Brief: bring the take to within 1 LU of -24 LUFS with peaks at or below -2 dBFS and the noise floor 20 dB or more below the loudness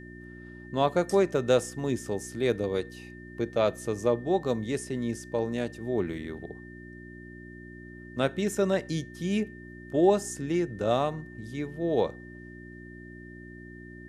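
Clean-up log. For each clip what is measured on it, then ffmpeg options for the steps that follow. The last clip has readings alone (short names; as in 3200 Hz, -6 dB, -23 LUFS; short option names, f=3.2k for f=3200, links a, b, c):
hum 60 Hz; harmonics up to 360 Hz; hum level -43 dBFS; steady tone 1800 Hz; tone level -49 dBFS; loudness -29.0 LUFS; peak -9.5 dBFS; loudness target -24.0 LUFS
-> -af "bandreject=f=60:t=h:w=4,bandreject=f=120:t=h:w=4,bandreject=f=180:t=h:w=4,bandreject=f=240:t=h:w=4,bandreject=f=300:t=h:w=4,bandreject=f=360:t=h:w=4"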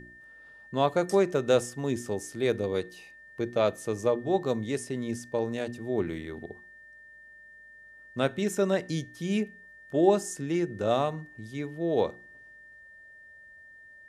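hum none; steady tone 1800 Hz; tone level -49 dBFS
-> -af "bandreject=f=1.8k:w=30"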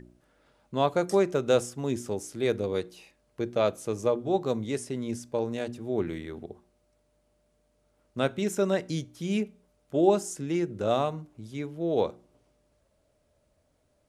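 steady tone none; loudness -29.0 LUFS; peak -8.5 dBFS; loudness target -24.0 LUFS
-> -af "volume=5dB"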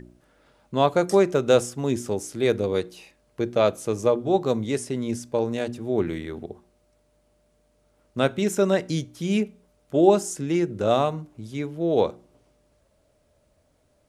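loudness -24.0 LUFS; peak -3.5 dBFS; noise floor -66 dBFS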